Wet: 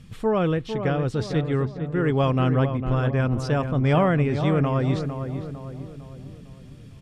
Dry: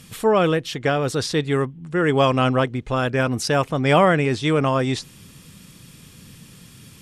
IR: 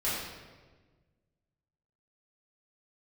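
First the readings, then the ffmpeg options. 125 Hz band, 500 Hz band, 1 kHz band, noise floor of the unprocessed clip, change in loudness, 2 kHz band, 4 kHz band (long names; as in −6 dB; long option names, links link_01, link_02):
+2.0 dB, −4.5 dB, −6.5 dB, −47 dBFS, −3.0 dB, −8.0 dB, −10.5 dB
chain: -filter_complex "[0:a]aemphasis=mode=reproduction:type=bsi,asplit=2[link_01][link_02];[link_02]adelay=453,lowpass=frequency=1500:poles=1,volume=-7.5dB,asplit=2[link_03][link_04];[link_04]adelay=453,lowpass=frequency=1500:poles=1,volume=0.5,asplit=2[link_05][link_06];[link_06]adelay=453,lowpass=frequency=1500:poles=1,volume=0.5,asplit=2[link_07][link_08];[link_08]adelay=453,lowpass=frequency=1500:poles=1,volume=0.5,asplit=2[link_09][link_10];[link_10]adelay=453,lowpass=frequency=1500:poles=1,volume=0.5,asplit=2[link_11][link_12];[link_12]adelay=453,lowpass=frequency=1500:poles=1,volume=0.5[link_13];[link_01][link_03][link_05][link_07][link_09][link_11][link_13]amix=inputs=7:normalize=0,volume=-7dB"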